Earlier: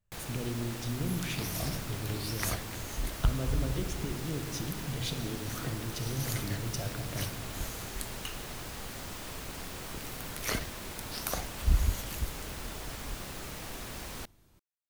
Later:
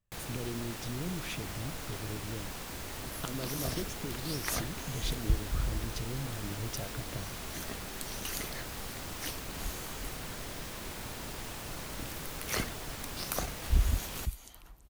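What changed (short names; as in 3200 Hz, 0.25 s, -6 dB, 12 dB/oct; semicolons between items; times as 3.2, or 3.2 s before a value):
second sound: entry +2.05 s; reverb: off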